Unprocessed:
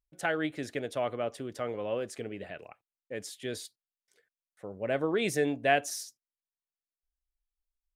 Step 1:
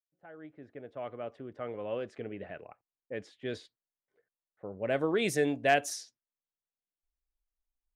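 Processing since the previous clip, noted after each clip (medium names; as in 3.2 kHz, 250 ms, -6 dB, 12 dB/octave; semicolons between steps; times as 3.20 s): fade-in on the opening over 2.62 s; overload inside the chain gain 14.5 dB; level-controlled noise filter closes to 1 kHz, open at -26 dBFS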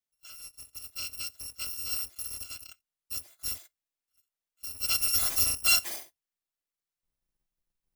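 bit-reversed sample order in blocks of 256 samples; trim +2 dB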